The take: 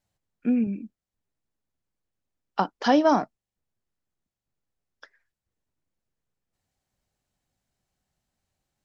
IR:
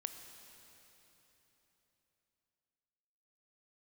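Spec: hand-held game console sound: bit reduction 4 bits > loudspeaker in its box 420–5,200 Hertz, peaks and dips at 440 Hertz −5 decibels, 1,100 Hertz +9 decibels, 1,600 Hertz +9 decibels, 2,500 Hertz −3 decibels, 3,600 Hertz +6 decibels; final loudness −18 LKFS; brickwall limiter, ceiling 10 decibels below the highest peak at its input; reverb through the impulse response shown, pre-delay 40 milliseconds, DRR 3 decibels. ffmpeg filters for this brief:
-filter_complex "[0:a]alimiter=limit=-17.5dB:level=0:latency=1,asplit=2[link_01][link_02];[1:a]atrim=start_sample=2205,adelay=40[link_03];[link_02][link_03]afir=irnorm=-1:irlink=0,volume=-1dB[link_04];[link_01][link_04]amix=inputs=2:normalize=0,acrusher=bits=3:mix=0:aa=0.000001,highpass=420,equalizer=frequency=440:width_type=q:width=4:gain=-5,equalizer=frequency=1100:width_type=q:width=4:gain=9,equalizer=frequency=1600:width_type=q:width=4:gain=9,equalizer=frequency=2500:width_type=q:width=4:gain=-3,equalizer=frequency=3600:width_type=q:width=4:gain=6,lowpass=frequency=5200:width=0.5412,lowpass=frequency=5200:width=1.3066,volume=7dB"

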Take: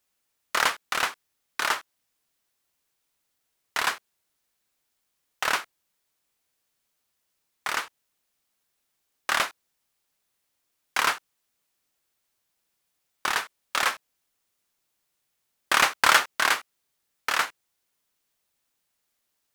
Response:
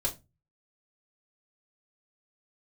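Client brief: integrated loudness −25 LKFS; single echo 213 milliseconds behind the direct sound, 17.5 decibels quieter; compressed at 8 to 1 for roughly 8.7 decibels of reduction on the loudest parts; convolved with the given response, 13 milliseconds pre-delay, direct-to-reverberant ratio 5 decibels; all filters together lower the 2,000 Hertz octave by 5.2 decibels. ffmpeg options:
-filter_complex "[0:a]equalizer=frequency=2000:width_type=o:gain=-7,acompressor=threshold=-25dB:ratio=8,aecho=1:1:213:0.133,asplit=2[link_01][link_02];[1:a]atrim=start_sample=2205,adelay=13[link_03];[link_02][link_03]afir=irnorm=-1:irlink=0,volume=-9.5dB[link_04];[link_01][link_04]amix=inputs=2:normalize=0,volume=7dB"

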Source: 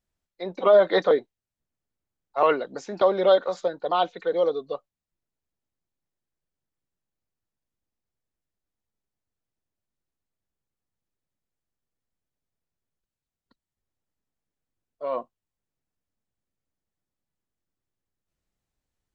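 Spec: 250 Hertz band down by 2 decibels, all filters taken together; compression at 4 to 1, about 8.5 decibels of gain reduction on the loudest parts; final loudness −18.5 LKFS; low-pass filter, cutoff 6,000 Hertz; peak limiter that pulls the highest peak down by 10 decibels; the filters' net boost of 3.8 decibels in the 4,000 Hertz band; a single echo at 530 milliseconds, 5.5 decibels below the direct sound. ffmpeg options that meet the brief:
ffmpeg -i in.wav -af "lowpass=6000,equalizer=frequency=250:width_type=o:gain=-3.5,equalizer=frequency=4000:width_type=o:gain=5,acompressor=threshold=-23dB:ratio=4,alimiter=limit=-23dB:level=0:latency=1,aecho=1:1:530:0.531,volume=15.5dB" out.wav

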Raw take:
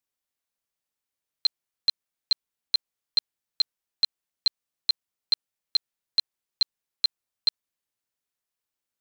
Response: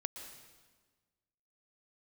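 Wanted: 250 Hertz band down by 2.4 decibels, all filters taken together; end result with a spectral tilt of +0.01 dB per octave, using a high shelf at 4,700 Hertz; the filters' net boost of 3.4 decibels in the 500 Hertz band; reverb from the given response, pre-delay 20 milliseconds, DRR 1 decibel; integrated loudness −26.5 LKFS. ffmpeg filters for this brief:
-filter_complex "[0:a]equalizer=frequency=250:width_type=o:gain=-5.5,equalizer=frequency=500:width_type=o:gain=5.5,highshelf=frequency=4700:gain=6,asplit=2[link_01][link_02];[1:a]atrim=start_sample=2205,adelay=20[link_03];[link_02][link_03]afir=irnorm=-1:irlink=0,volume=0dB[link_04];[link_01][link_04]amix=inputs=2:normalize=0,volume=-3dB"

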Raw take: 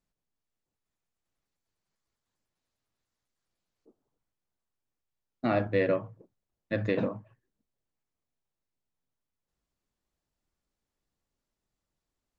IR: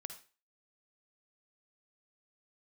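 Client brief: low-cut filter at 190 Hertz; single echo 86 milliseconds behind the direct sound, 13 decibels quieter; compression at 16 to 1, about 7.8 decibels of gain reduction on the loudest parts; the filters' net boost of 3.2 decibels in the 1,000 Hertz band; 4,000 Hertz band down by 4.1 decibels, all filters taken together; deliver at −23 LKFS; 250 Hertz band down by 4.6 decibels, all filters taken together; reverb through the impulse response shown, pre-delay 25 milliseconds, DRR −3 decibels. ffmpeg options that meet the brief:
-filter_complex "[0:a]highpass=190,equalizer=frequency=250:width_type=o:gain=-4.5,equalizer=frequency=1000:width_type=o:gain=5.5,equalizer=frequency=4000:width_type=o:gain=-5.5,acompressor=threshold=-29dB:ratio=16,aecho=1:1:86:0.224,asplit=2[link_01][link_02];[1:a]atrim=start_sample=2205,adelay=25[link_03];[link_02][link_03]afir=irnorm=-1:irlink=0,volume=7dB[link_04];[link_01][link_04]amix=inputs=2:normalize=0,volume=8.5dB"

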